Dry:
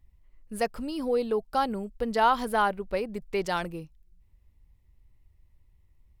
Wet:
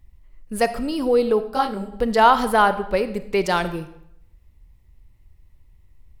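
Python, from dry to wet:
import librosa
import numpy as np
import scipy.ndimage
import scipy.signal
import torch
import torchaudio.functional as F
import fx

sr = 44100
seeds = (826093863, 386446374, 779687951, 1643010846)

y = fx.rev_freeverb(x, sr, rt60_s=0.76, hf_ratio=0.85, predelay_ms=5, drr_db=11.5)
y = fx.detune_double(y, sr, cents=48, at=(1.5, 1.91), fade=0.02)
y = y * 10.0 ** (8.0 / 20.0)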